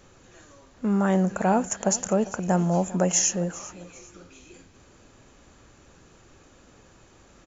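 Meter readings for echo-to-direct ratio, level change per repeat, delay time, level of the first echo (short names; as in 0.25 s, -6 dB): -17.5 dB, -9.5 dB, 0.398 s, -18.0 dB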